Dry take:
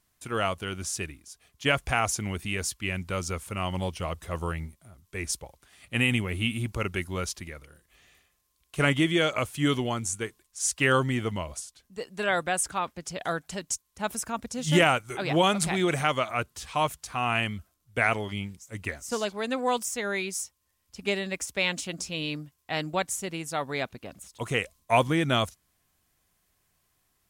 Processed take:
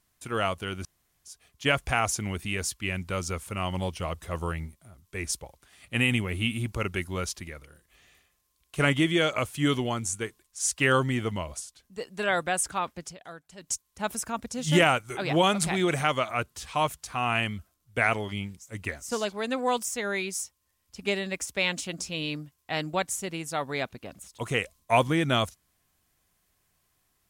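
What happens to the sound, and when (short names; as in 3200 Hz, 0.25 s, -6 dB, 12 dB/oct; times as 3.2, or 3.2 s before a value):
0.85–1.25 room tone
13.03–13.71 dip -14 dB, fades 0.14 s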